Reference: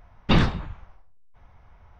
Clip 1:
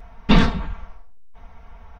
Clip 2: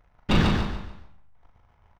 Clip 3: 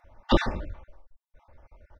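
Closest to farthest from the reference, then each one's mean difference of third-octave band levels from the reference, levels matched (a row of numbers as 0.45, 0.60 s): 1, 3, 2; 3.0, 4.0, 8.0 dB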